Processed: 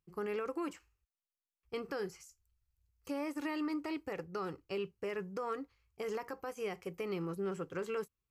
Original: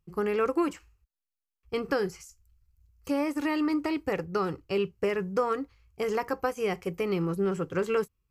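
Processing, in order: low shelf 150 Hz -8 dB; limiter -22 dBFS, peak gain reduction 8.5 dB; gain -7.5 dB

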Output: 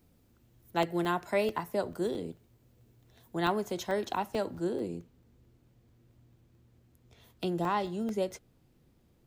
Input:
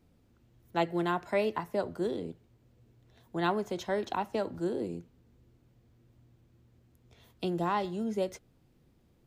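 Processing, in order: high shelf 7700 Hz +12 dB, from 4.55 s +4 dB; crackling interface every 0.22 s, samples 64, zero, from 0.39

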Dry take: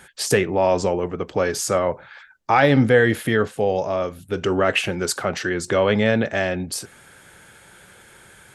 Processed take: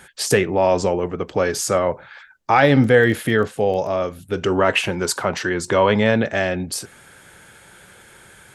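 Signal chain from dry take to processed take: 2.72–3.89 crackle 15/s -29 dBFS; 4.55–6.16 bell 970 Hz +10.5 dB 0.21 oct; gain +1.5 dB

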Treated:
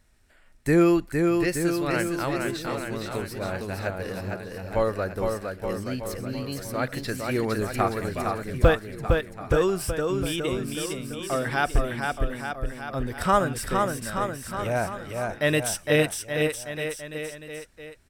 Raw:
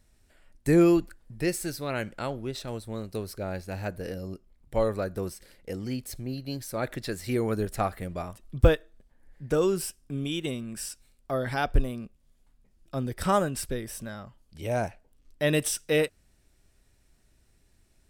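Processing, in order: bell 1500 Hz +6 dB 1.7 oct; bouncing-ball echo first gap 0.46 s, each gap 0.9×, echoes 5

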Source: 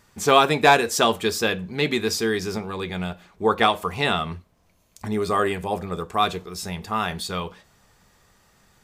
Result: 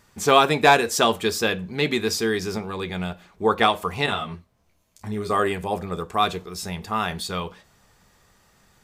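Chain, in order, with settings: 4.06–5.3 detuned doubles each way 16 cents

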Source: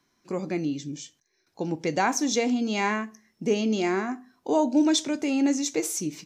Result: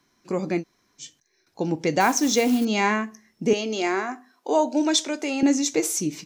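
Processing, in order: 0.61–1.01 room tone, crossfade 0.06 s; 2–2.65 modulation noise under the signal 20 dB; 3.53–5.43 HPF 400 Hz 12 dB/oct; gain +4 dB

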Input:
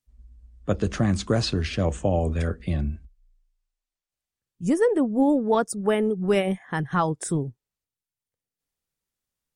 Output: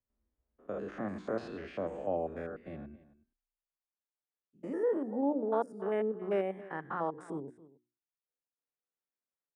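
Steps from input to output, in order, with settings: stepped spectrum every 0.1 s; three-band isolator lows -23 dB, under 240 Hz, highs -22 dB, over 2100 Hz; notches 60/120/180/240/300/360 Hz; echo 0.275 s -18.5 dB; gain -6 dB

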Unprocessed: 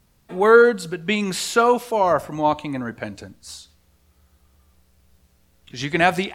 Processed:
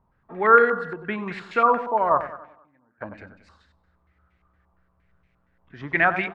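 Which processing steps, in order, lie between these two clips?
2.27–3.01 flipped gate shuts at -24 dBFS, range -31 dB; feedback echo 94 ms, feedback 45%, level -10 dB; stepped low-pass 8.6 Hz 970–2200 Hz; gain -7.5 dB

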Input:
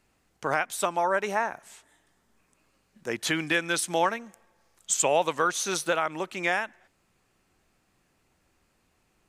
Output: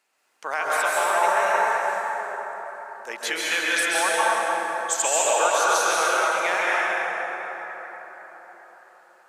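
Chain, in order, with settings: HPF 650 Hz 12 dB/oct; plate-style reverb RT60 4.8 s, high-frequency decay 0.45×, pre-delay 0.12 s, DRR -7 dB

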